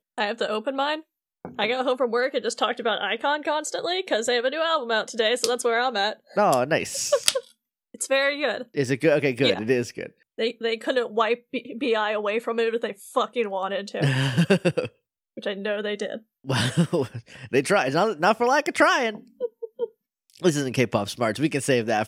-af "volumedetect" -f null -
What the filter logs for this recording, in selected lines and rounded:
mean_volume: -24.6 dB
max_volume: -1.9 dB